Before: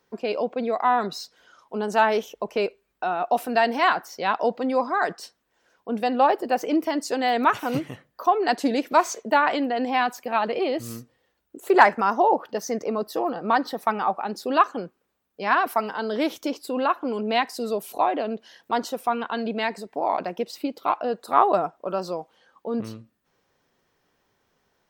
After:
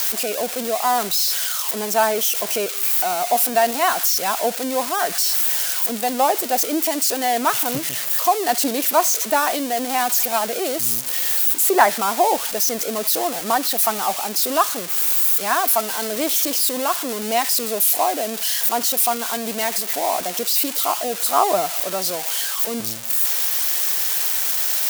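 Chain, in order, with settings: switching spikes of -12 dBFS; bell 680 Hz +5.5 dB 0.33 oct; gain -1 dB

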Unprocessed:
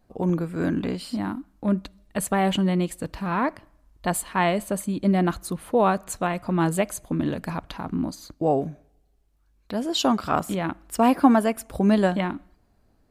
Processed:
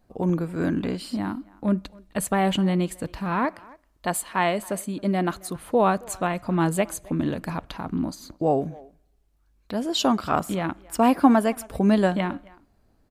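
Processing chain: 3.45–5.56 low shelf 150 Hz -10.5 dB; speakerphone echo 0.27 s, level -22 dB

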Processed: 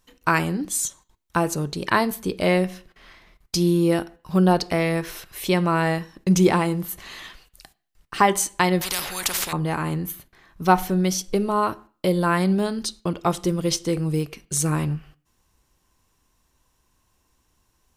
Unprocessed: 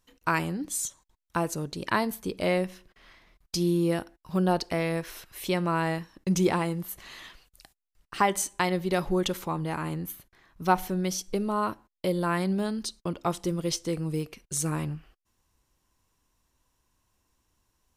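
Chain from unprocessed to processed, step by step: on a send at -13 dB: reverb RT60 0.45 s, pre-delay 3 ms; 8.81–9.53 on the sum: spectral compressor 10:1; gain +6 dB

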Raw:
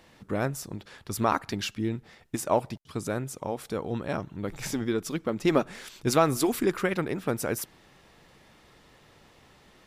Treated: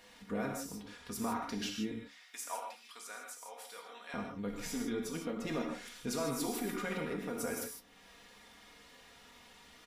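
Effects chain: 1.91–4.14 HPF 1200 Hz 12 dB/oct; comb 4.2 ms, depth 70%; limiter -18.5 dBFS, peak gain reduction 10 dB; flange 0.24 Hz, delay 9.8 ms, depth 4.7 ms, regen +70%; non-linear reverb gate 0.18 s flat, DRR 1 dB; mismatched tape noise reduction encoder only; gain -6 dB

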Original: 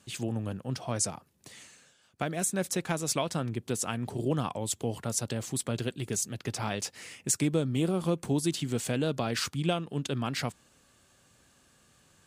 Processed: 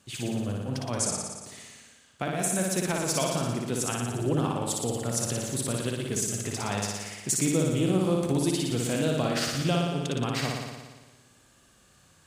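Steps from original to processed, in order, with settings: flutter echo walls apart 10 m, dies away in 1.3 s

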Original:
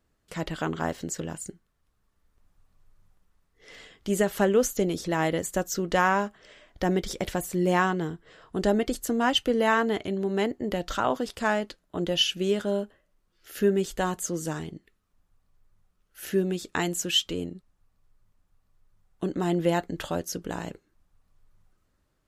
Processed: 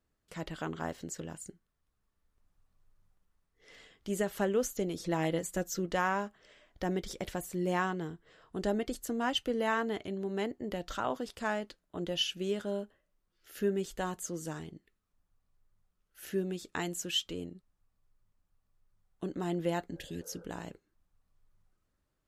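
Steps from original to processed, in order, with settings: 4.99–5.86 comb 5.9 ms, depth 64%; 19.93–20.42 spectral repair 450–1600 Hz both; gain -8 dB

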